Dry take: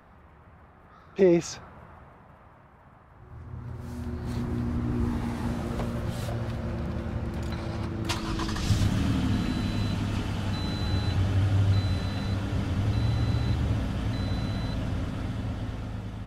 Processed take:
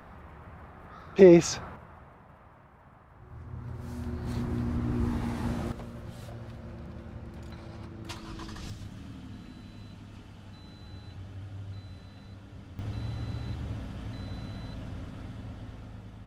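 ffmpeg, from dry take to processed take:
-af "asetnsamples=n=441:p=0,asendcmd='1.76 volume volume -1.5dB;5.72 volume volume -11dB;8.7 volume volume -18dB;12.79 volume volume -9.5dB',volume=5dB"

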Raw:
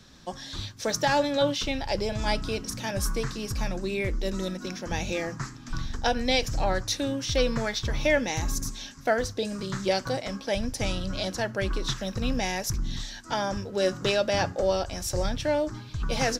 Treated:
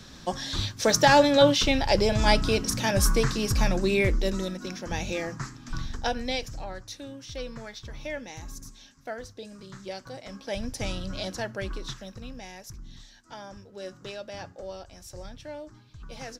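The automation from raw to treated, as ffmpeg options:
-af "volume=15dB,afade=t=out:st=3.99:d=0.49:silence=0.446684,afade=t=out:st=5.85:d=0.82:silence=0.281838,afade=t=in:st=10.12:d=0.55:silence=0.354813,afade=t=out:st=11.36:d=0.95:silence=0.281838"

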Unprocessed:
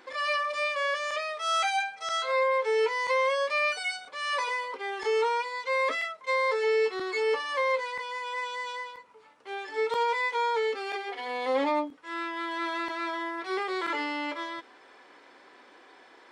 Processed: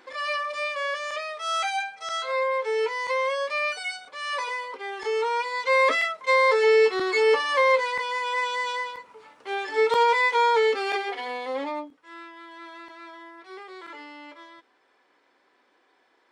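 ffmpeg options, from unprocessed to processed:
-af "volume=7dB,afade=t=in:st=5.25:d=0.42:silence=0.446684,afade=t=out:st=10.97:d=0.5:silence=0.316228,afade=t=out:st=11.47:d=0.93:silence=0.398107"

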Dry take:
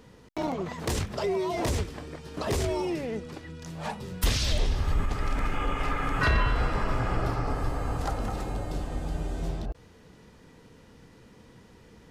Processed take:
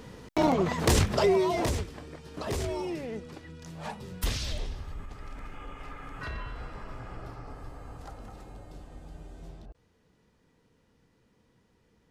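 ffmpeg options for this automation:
-af "volume=6.5dB,afade=t=out:st=1.16:d=0.65:silence=0.298538,afade=t=out:st=4.16:d=0.74:silence=0.316228"

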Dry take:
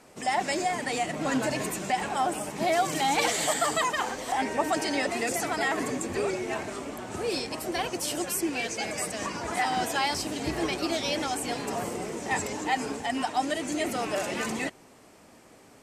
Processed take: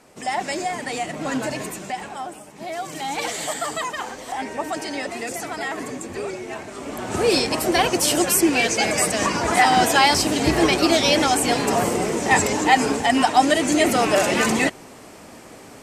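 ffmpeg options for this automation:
-af "volume=22.5dB,afade=t=out:st=1.47:d=0.99:silence=0.281838,afade=t=in:st=2.46:d=0.89:silence=0.375837,afade=t=in:st=6.73:d=0.5:silence=0.251189"

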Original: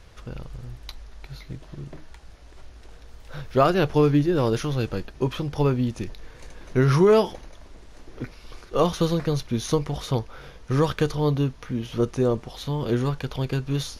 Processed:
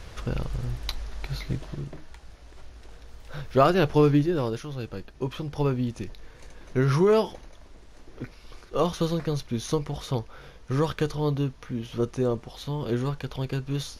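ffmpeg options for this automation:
-af "volume=13.5dB,afade=t=out:st=1.53:d=0.4:silence=0.421697,afade=t=out:st=4.1:d=0.53:silence=0.334965,afade=t=in:st=4.63:d=1.03:silence=0.473151"

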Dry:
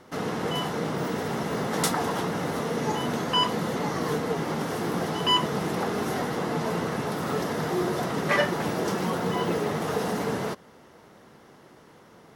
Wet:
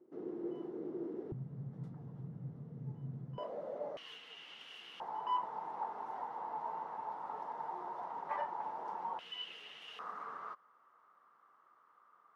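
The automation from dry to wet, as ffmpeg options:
-af "asetnsamples=n=441:p=0,asendcmd='1.32 bandpass f 130;3.38 bandpass f 590;3.97 bandpass f 2900;5 bandpass f 900;9.19 bandpass f 2900;9.99 bandpass f 1200',bandpass=f=350:t=q:w=11:csg=0"

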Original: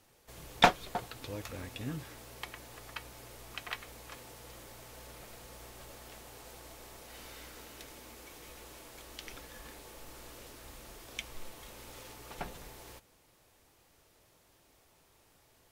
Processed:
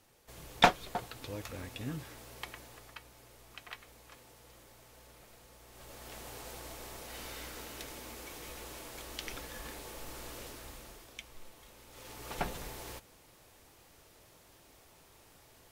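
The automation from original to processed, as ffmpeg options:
-af "volume=23dB,afade=t=out:st=2.52:d=0.48:silence=0.473151,afade=t=in:st=5.66:d=0.61:silence=0.266073,afade=t=out:st=10.42:d=0.74:silence=0.281838,afade=t=in:st=11.9:d=0.45:silence=0.251189"

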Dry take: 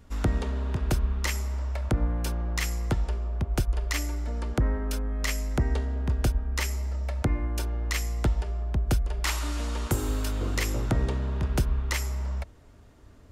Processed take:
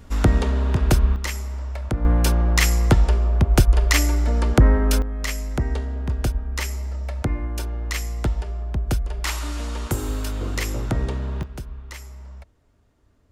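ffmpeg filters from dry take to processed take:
-af "asetnsamples=n=441:p=0,asendcmd='1.16 volume volume 1dB;2.05 volume volume 11dB;5.02 volume volume 2dB;11.43 volume volume -9dB',volume=8.5dB"

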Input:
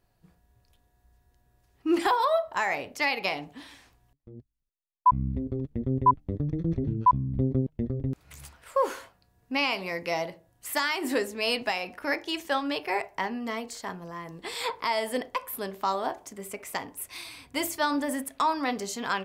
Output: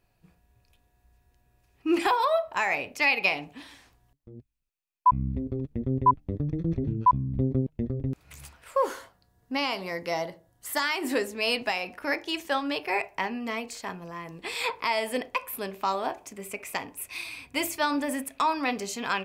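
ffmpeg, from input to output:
-af "asetnsamples=n=441:p=0,asendcmd='3.62 equalizer g -0.5;4.35 equalizer g 10.5;5.26 equalizer g 4;8.85 equalizer g -8;10.82 equalizer g 3;12.93 equalizer g 11.5',equalizer=f=2.5k:t=o:w=0.23:g=10"

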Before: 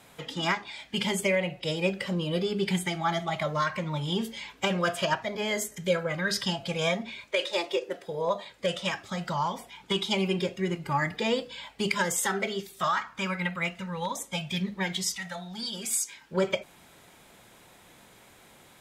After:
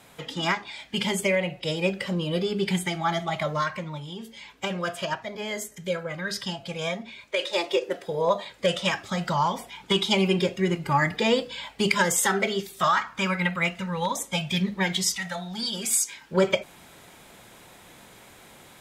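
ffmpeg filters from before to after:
-af "volume=17dB,afade=t=out:st=3.52:d=0.64:silence=0.251189,afade=t=in:st=4.16:d=0.35:silence=0.421697,afade=t=in:st=7.15:d=0.68:silence=0.421697"

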